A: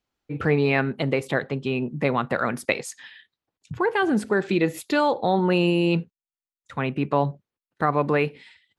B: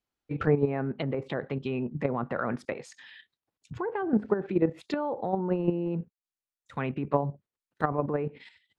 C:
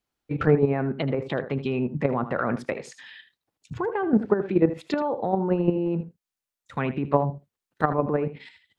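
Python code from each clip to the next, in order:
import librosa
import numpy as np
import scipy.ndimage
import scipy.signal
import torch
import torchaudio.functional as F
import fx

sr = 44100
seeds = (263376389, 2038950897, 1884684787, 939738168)

y1 = fx.env_lowpass_down(x, sr, base_hz=960.0, full_db=-18.5)
y1 = fx.level_steps(y1, sr, step_db=10)
y2 = y1 + 10.0 ** (-13.5 / 20.0) * np.pad(y1, (int(79 * sr / 1000.0), 0))[:len(y1)]
y2 = F.gain(torch.from_numpy(y2), 4.5).numpy()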